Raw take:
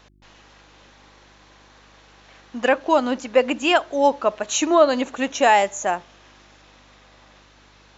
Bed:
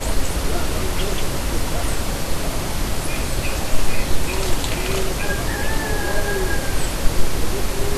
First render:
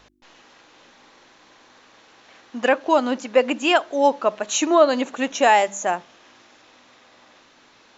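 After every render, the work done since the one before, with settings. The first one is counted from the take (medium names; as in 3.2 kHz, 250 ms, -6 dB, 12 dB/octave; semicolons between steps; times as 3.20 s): de-hum 50 Hz, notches 4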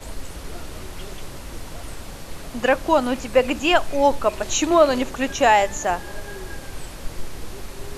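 add bed -13 dB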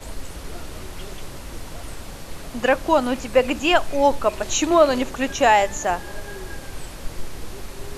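no audible change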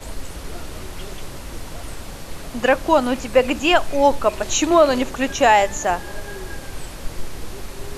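trim +2 dB; peak limiter -3 dBFS, peak gain reduction 1.5 dB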